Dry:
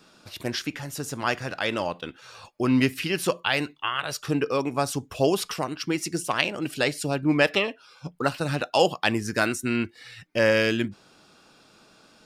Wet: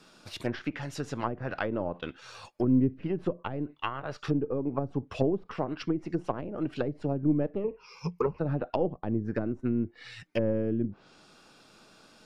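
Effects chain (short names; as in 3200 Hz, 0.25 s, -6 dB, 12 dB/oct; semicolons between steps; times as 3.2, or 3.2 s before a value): half-wave gain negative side -3 dB; treble ducked by the level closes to 360 Hz, closed at -22.5 dBFS; 7.64–8.39 ripple EQ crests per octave 0.81, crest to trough 18 dB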